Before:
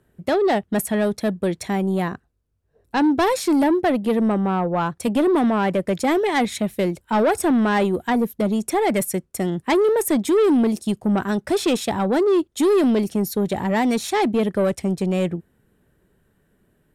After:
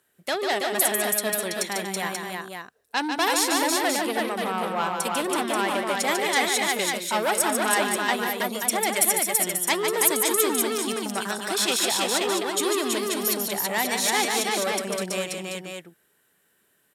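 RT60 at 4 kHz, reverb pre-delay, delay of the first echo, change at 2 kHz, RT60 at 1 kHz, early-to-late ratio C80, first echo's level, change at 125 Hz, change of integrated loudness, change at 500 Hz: none, none, 0.146 s, +3.5 dB, none, none, -5.5 dB, -14.0 dB, -3.0 dB, -6.5 dB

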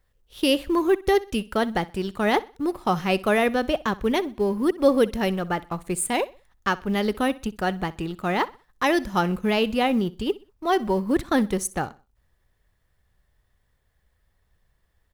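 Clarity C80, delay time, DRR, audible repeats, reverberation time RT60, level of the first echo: none, 63 ms, none, 2, none, -20.0 dB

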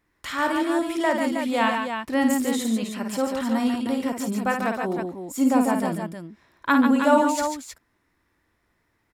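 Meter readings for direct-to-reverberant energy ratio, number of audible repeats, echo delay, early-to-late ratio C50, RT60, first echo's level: none, 3, 53 ms, none, none, -6.0 dB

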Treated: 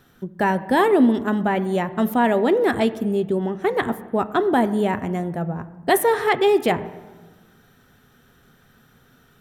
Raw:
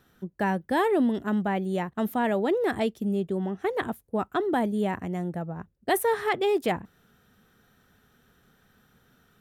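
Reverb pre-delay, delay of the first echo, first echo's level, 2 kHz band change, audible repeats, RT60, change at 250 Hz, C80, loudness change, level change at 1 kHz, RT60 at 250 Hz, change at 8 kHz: 7 ms, none, none, +7.0 dB, none, 1.4 s, +6.5 dB, 17.0 dB, +7.0 dB, +7.0 dB, 1.9 s, +6.5 dB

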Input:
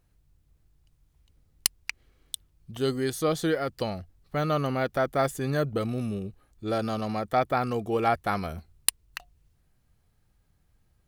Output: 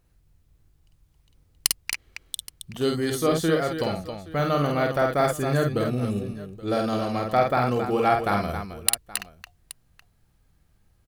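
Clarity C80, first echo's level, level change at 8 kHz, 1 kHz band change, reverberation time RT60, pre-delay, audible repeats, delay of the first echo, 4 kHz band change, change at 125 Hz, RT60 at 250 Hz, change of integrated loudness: none, -4.0 dB, +4.0 dB, +4.0 dB, none, none, 3, 49 ms, +4.0 dB, +4.0 dB, none, +3.5 dB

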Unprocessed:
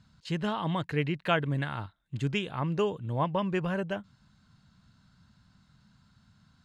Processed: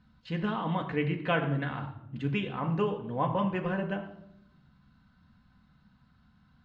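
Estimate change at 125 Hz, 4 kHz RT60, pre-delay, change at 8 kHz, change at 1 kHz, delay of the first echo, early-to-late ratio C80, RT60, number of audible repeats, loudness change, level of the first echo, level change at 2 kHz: -1.0 dB, 0.55 s, 4 ms, n/a, +0.5 dB, none, 12.0 dB, 0.75 s, none, -0.5 dB, none, -0.5 dB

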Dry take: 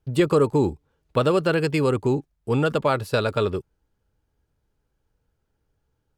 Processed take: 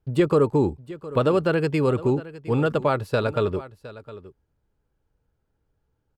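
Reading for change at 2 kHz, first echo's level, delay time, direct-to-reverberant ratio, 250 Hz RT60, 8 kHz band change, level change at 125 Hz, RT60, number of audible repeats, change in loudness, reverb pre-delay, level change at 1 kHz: -2.0 dB, -17.0 dB, 0.712 s, none, none, n/a, 0.0 dB, none, 1, -0.5 dB, none, -1.0 dB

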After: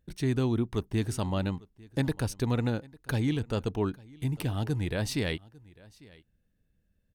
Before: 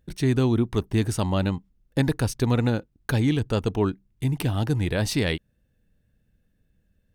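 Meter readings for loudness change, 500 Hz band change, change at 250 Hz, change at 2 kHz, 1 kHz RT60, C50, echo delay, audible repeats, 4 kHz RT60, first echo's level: -6.0 dB, -6.0 dB, -6.0 dB, -6.0 dB, none, none, 0.849 s, 1, none, -23.5 dB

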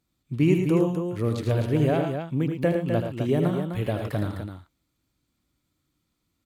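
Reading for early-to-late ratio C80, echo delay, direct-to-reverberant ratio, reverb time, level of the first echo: none, 78 ms, none, none, -8.0 dB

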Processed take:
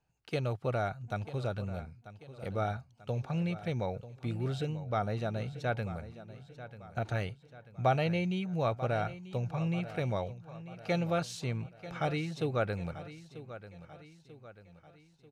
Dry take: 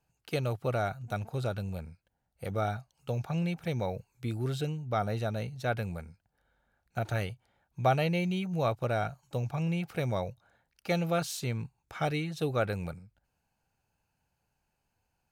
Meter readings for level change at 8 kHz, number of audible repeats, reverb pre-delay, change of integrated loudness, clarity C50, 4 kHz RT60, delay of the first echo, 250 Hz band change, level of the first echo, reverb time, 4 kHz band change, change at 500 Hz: -6.5 dB, 4, none, -1.5 dB, none, none, 0.94 s, -1.5 dB, -14.5 dB, none, -3.0 dB, -1.5 dB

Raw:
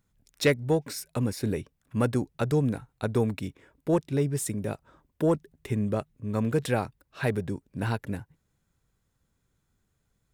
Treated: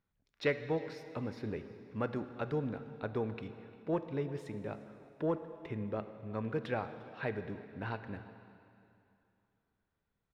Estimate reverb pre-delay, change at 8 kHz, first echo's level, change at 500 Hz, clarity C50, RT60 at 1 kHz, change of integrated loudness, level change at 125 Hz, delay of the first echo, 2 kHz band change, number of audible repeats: 7 ms, under -25 dB, -22.5 dB, -8.0 dB, 10.5 dB, 2.8 s, -9.5 dB, -12.5 dB, 0.351 s, -7.0 dB, 1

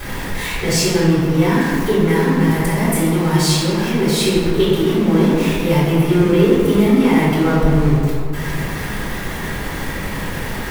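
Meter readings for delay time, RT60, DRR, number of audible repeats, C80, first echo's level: none, 2.5 s, -12.5 dB, none, 0.5 dB, none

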